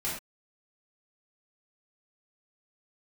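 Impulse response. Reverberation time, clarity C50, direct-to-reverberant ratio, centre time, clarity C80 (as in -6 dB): not exponential, 3.0 dB, -8.5 dB, 41 ms, 7.5 dB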